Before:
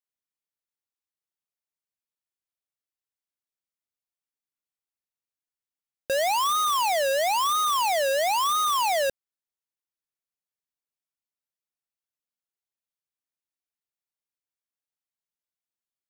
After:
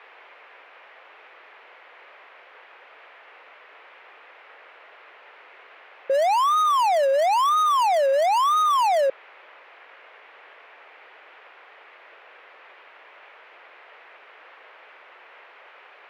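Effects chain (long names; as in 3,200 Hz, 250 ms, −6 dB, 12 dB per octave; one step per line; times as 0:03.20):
spectral envelope exaggerated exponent 3
noise in a band 430–2,500 Hz −53 dBFS
level +4 dB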